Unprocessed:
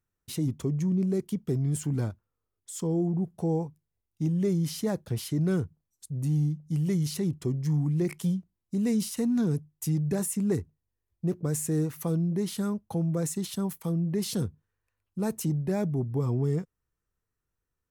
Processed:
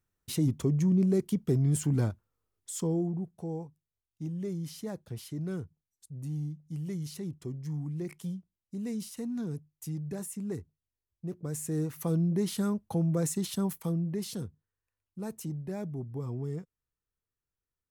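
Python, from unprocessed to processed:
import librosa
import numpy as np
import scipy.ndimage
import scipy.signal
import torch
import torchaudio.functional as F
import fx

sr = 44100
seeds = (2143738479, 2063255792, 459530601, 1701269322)

y = fx.gain(x, sr, db=fx.line((2.72, 1.5), (3.37, -9.0), (11.28, -9.0), (12.21, 0.0), (13.76, 0.0), (14.45, -8.5)))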